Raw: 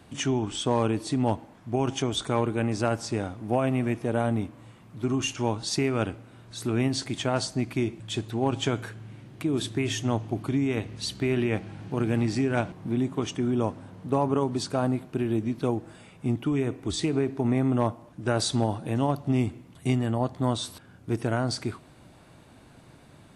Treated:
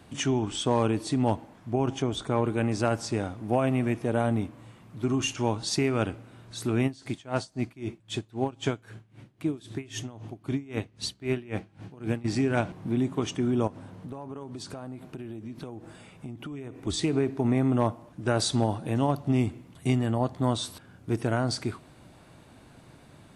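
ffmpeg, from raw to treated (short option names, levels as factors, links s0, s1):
-filter_complex "[0:a]asettb=1/sr,asplit=3[s0][s1][s2];[s0]atrim=end=1.734[s3];[s1]atrim=start=1.73:end=2.45,asetpts=PTS-STARTPTS,afade=t=in:d=0.004:c=qsin,afade=t=out:st=0.716:d=0.004:c=qsin,highshelf=f=2000:g=-7.5[s4];[s2]atrim=start=2.446[s5];[s3][s4]acrossfade=d=0.004:c1=hsin:c2=qsin[s6];[s6][s5]acrossfade=d=0.004:c1=qsin:c2=hsin,asplit=3[s7][s8][s9];[s7]afade=t=out:st=6.86:d=0.02[s10];[s8]aeval=exprs='val(0)*pow(10,-22*(0.5-0.5*cos(2*PI*3.8*n/s))/20)':c=same,afade=t=in:st=6.86:d=0.02,afade=t=out:st=12.24:d=0.02[s11];[s9]afade=t=in:st=12.24:d=0.02[s12];[s10][s11][s12]amix=inputs=3:normalize=0,asettb=1/sr,asplit=3[s13][s14][s15];[s13]atrim=end=13.674[s16];[s14]atrim=start=13.67:end=16.87,asetpts=PTS-STARTPTS,afade=t=in:d=0.004:c=qsin,afade=t=out:st=3.196:d=0.004:c=qsin,acompressor=threshold=0.0178:ratio=8:attack=3.2:release=140:knee=1:detection=peak[s17];[s15]atrim=start=16.866[s18];[s16][s17]acrossfade=d=0.004:c1=hsin:c2=qsin[s19];[s19][s18]acrossfade=d=0.004:c1=qsin:c2=hsin"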